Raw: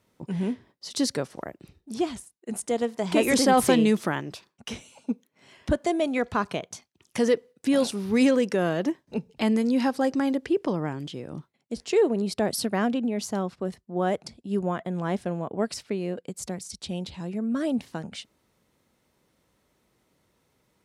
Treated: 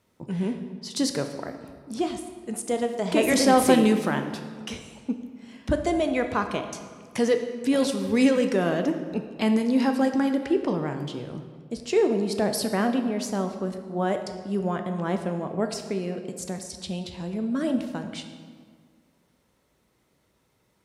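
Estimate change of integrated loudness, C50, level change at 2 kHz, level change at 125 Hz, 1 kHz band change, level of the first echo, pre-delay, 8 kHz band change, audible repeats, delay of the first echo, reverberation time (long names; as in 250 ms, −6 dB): +1.0 dB, 8.0 dB, +1.0 dB, +1.0 dB, +1.0 dB, no echo audible, 11 ms, +0.5 dB, no echo audible, no echo audible, 1.8 s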